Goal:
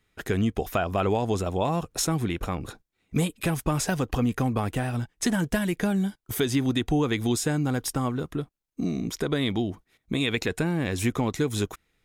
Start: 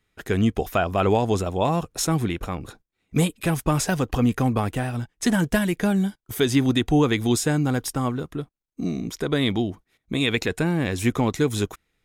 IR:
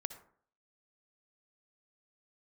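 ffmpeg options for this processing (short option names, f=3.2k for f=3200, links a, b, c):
-af "acompressor=threshold=-27dB:ratio=2,volume=1.5dB"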